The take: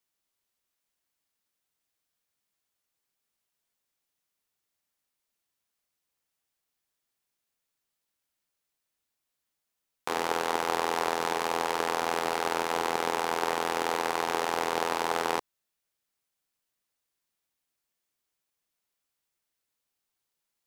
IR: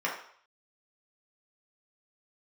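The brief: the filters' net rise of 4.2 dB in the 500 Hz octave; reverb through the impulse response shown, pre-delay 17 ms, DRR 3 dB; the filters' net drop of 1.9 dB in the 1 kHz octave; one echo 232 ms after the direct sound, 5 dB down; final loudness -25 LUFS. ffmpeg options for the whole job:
-filter_complex "[0:a]equalizer=f=500:t=o:g=6,equalizer=f=1000:t=o:g=-4.5,aecho=1:1:232:0.562,asplit=2[s0][s1];[1:a]atrim=start_sample=2205,adelay=17[s2];[s1][s2]afir=irnorm=-1:irlink=0,volume=0.237[s3];[s0][s3]amix=inputs=2:normalize=0,volume=1.06"

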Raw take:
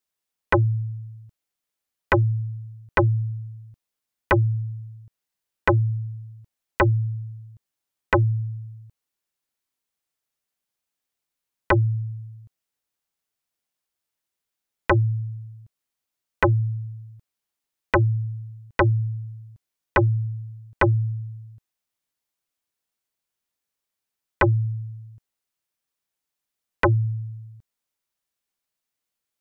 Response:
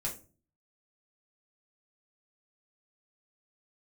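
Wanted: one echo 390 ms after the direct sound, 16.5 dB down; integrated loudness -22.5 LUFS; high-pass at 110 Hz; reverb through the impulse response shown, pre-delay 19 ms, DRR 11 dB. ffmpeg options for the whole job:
-filter_complex "[0:a]highpass=110,aecho=1:1:390:0.15,asplit=2[s0][s1];[1:a]atrim=start_sample=2205,adelay=19[s2];[s1][s2]afir=irnorm=-1:irlink=0,volume=0.224[s3];[s0][s3]amix=inputs=2:normalize=0,volume=1.26"

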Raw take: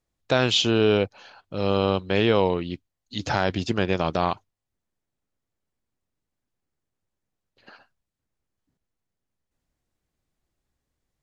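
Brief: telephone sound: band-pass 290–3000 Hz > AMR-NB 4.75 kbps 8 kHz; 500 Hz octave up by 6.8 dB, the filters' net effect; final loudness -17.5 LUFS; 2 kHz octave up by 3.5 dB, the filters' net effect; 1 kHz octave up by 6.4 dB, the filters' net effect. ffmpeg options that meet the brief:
-af "highpass=290,lowpass=3000,equalizer=f=500:t=o:g=7.5,equalizer=f=1000:t=o:g=5,equalizer=f=2000:t=o:g=3.5,volume=1.33" -ar 8000 -c:a libopencore_amrnb -b:a 4750

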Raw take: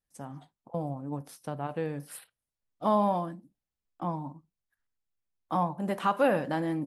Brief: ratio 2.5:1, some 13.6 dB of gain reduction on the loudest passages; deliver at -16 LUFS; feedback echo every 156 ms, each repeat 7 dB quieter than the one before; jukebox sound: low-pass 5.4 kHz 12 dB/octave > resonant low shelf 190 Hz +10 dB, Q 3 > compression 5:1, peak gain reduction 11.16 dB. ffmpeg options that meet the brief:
-af "acompressor=threshold=0.00891:ratio=2.5,lowpass=5400,lowshelf=f=190:t=q:w=3:g=10,aecho=1:1:156|312|468|624|780:0.447|0.201|0.0905|0.0407|0.0183,acompressor=threshold=0.0141:ratio=5,volume=18.8"

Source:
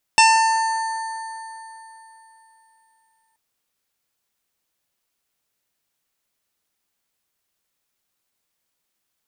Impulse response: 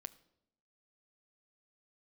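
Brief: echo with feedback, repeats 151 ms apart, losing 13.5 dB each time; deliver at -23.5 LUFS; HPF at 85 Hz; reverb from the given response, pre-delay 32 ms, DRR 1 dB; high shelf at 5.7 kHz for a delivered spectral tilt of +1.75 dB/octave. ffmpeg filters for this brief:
-filter_complex "[0:a]highpass=85,highshelf=f=5700:g=-7,aecho=1:1:151|302:0.211|0.0444,asplit=2[s0][s1];[1:a]atrim=start_sample=2205,adelay=32[s2];[s1][s2]afir=irnorm=-1:irlink=0,volume=1.58[s3];[s0][s3]amix=inputs=2:normalize=0,volume=0.562"

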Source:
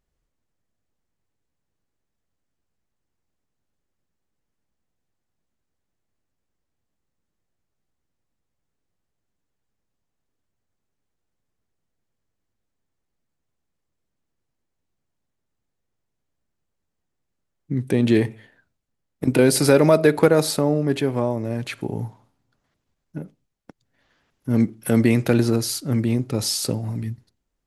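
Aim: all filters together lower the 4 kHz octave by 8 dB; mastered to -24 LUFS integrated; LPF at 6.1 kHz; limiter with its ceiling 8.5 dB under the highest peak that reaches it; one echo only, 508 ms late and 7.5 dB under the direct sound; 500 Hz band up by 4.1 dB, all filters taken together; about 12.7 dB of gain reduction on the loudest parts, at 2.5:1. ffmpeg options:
-af "lowpass=6100,equalizer=f=500:t=o:g=5,equalizer=f=4000:t=o:g=-9,acompressor=threshold=0.0447:ratio=2.5,alimiter=limit=0.119:level=0:latency=1,aecho=1:1:508:0.422,volume=2"

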